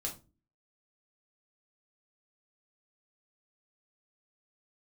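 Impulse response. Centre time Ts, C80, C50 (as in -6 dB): 16 ms, 18.0 dB, 11.0 dB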